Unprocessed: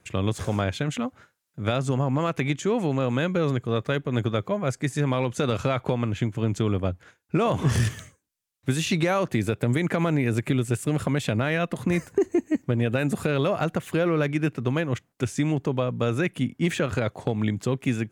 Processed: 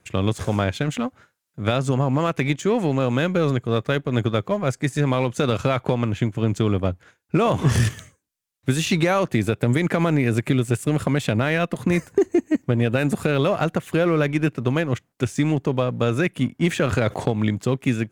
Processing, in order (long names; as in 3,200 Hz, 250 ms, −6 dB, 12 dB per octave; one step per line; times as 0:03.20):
in parallel at −4 dB: dead-zone distortion −35 dBFS
0:16.82–0:17.30: on the sum: envelope flattener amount 50%